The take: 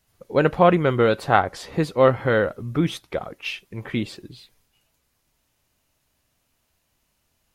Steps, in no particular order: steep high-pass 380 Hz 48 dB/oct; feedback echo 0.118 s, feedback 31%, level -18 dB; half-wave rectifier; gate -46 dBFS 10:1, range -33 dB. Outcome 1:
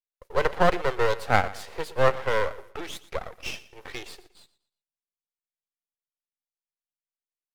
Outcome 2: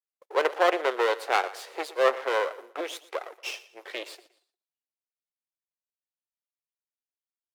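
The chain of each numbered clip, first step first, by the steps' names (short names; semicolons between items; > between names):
steep high-pass > gate > half-wave rectifier > feedback echo; half-wave rectifier > steep high-pass > gate > feedback echo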